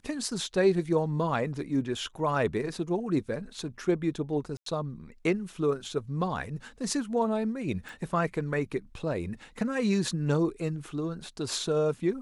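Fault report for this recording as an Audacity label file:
4.570000	4.660000	drop-out 93 ms
7.890000	7.890000	click

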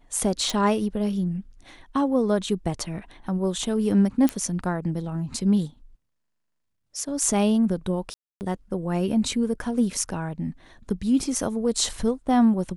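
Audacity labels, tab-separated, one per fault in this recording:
0.500000	0.500000	click
4.290000	4.290000	click −10 dBFS
8.140000	8.410000	drop-out 269 ms

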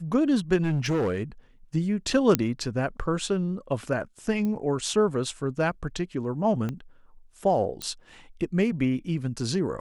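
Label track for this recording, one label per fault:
0.620000	1.220000	clipping −21.5 dBFS
2.350000	2.350000	click −5 dBFS
4.450000	4.450000	click −20 dBFS
6.690000	6.690000	click −19 dBFS
7.820000	7.820000	click −17 dBFS

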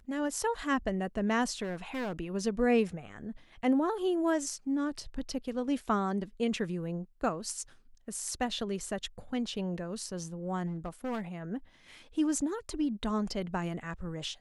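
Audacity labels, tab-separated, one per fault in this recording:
1.630000	2.130000	clipping −32 dBFS
10.660000	11.210000	clipping −31.5 dBFS

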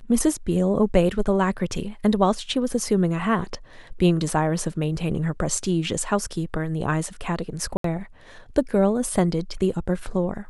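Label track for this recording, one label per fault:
7.770000	7.840000	drop-out 73 ms

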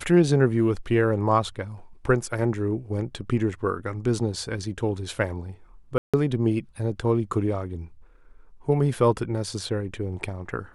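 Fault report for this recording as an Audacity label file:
5.980000	6.140000	drop-out 156 ms

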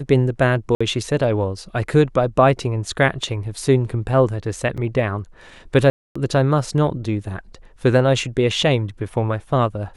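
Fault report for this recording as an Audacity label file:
0.750000	0.810000	drop-out 55 ms
4.770000	4.780000	drop-out 6.6 ms
5.900000	6.160000	drop-out 255 ms

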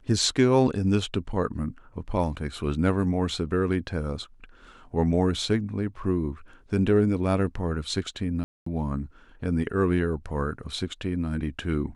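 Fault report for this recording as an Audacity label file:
8.440000	8.660000	drop-out 224 ms

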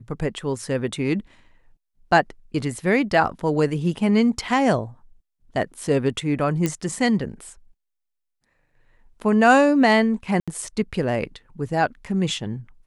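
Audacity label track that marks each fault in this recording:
6.660000	6.660000	click −9 dBFS
10.400000	10.480000	drop-out 76 ms

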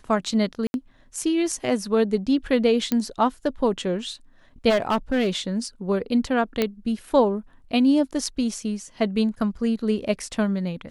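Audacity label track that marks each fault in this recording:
0.670000	0.740000	drop-out 71 ms
2.920000	2.920000	click −9 dBFS
4.690000	5.300000	clipping −17 dBFS
6.620000	6.620000	click −8 dBFS

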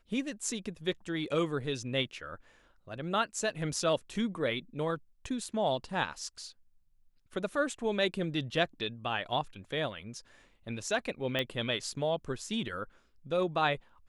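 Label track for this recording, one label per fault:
11.390000	11.390000	click −18 dBFS

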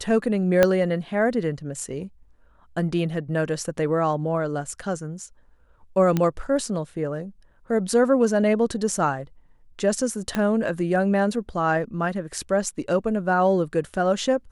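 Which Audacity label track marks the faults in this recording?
0.630000	0.630000	click −4 dBFS
6.170000	6.170000	click −10 dBFS
10.350000	10.350000	click −11 dBFS

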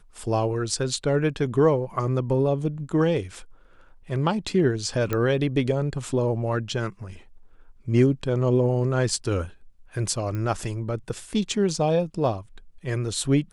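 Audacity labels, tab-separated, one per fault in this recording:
5.130000	5.130000	click −12 dBFS
10.350000	10.350000	click −20 dBFS

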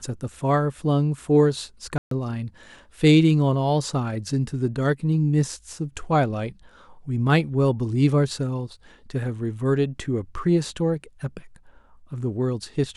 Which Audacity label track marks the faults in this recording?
1.980000	2.110000	drop-out 133 ms

